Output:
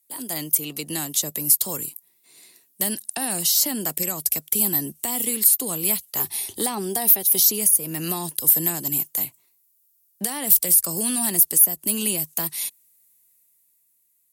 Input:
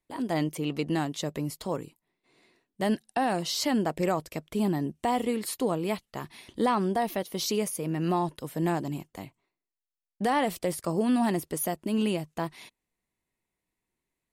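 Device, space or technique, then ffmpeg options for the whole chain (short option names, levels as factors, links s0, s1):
FM broadcast chain: -filter_complex "[0:a]asettb=1/sr,asplit=3[s0][s1][s2];[s0]atrim=end=6.194[s3];[s1]atrim=start=6.19:end=7.45,asetpts=PTS-STARTPTS,afade=t=in:d=0.004:c=qsin,afade=t=out:st=1.256:d=0.004:c=qsin,equalizer=f=100:t=o:w=0.33:g=10,equalizer=f=400:t=o:w=0.33:g=11,equalizer=f=800:t=o:w=0.33:g=12[s4];[s2]atrim=start=7.446[s5];[s3][s4]acrossfade=d=0.004:c1=hsin:c2=qsin[s6];[s6][s5]acrossfade=d=0.004:c1=qsin:c2=hsin,highpass=f=47:w=0.5412,highpass=f=47:w=1.3066,dynaudnorm=f=130:g=17:m=2.11,acrossover=split=120|300|1300[s7][s8][s9][s10];[s7]acompressor=threshold=0.00398:ratio=4[s11];[s8]acompressor=threshold=0.0631:ratio=4[s12];[s9]acompressor=threshold=0.0355:ratio=4[s13];[s10]acompressor=threshold=0.02:ratio=4[s14];[s11][s12][s13][s14]amix=inputs=4:normalize=0,aemphasis=mode=production:type=75fm,alimiter=limit=0.211:level=0:latency=1:release=298,asoftclip=type=hard:threshold=0.15,lowpass=f=15000:w=0.5412,lowpass=f=15000:w=1.3066,aemphasis=mode=production:type=75fm,volume=0.631"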